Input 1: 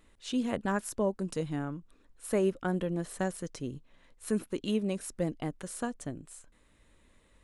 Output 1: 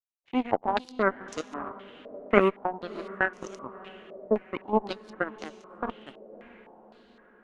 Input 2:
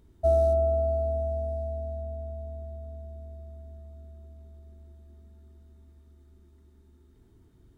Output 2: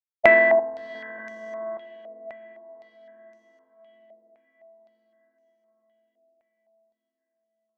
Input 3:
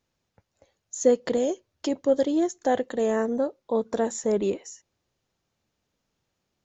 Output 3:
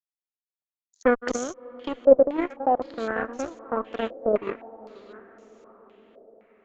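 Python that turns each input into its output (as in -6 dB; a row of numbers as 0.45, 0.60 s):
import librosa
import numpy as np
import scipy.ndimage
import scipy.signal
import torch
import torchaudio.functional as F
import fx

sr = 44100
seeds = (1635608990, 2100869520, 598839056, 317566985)

y = fx.reverse_delay(x, sr, ms=591, wet_db=-8)
y = scipy.signal.sosfilt(scipy.signal.butter(6, 230.0, 'highpass', fs=sr, output='sos'), y)
y = fx.low_shelf(y, sr, hz=290.0, db=7.0)
y = 10.0 ** (-16.0 / 20.0) * np.tanh(y / 10.0 ** (-16.0 / 20.0))
y = fx.power_curve(y, sr, exponent=3.0)
y = fx.echo_diffused(y, sr, ms=645, feedback_pct=56, wet_db=-16.0)
y = fx.cheby_harmonics(y, sr, harmonics=(2, 3, 4), levels_db=(-13, -18, -24), full_scale_db=-16.0)
y = fx.filter_held_lowpass(y, sr, hz=3.9, low_hz=600.0, high_hz=6100.0)
y = y * 10.0 ** (-3 / 20.0) / np.max(np.abs(y))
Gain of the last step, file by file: +14.0, +11.5, +3.0 dB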